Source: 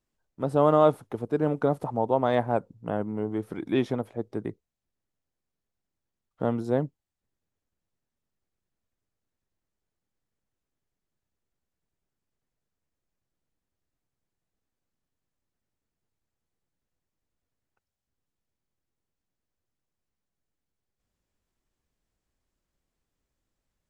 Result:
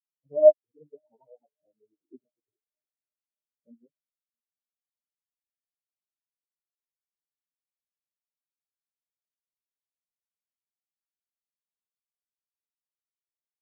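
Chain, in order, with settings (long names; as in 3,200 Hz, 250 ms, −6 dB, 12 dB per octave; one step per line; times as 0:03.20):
time stretch by phase vocoder 0.57×
feedback delay with all-pass diffusion 700 ms, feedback 77%, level −14 dB
every bin expanded away from the loudest bin 4 to 1
level +5.5 dB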